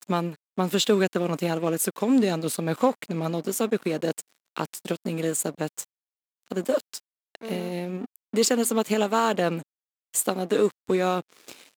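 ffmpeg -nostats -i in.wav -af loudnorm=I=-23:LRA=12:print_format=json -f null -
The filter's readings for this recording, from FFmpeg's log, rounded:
"input_i" : "-25.9",
"input_tp" : "-7.1",
"input_lra" : "5.5",
"input_thresh" : "-36.4",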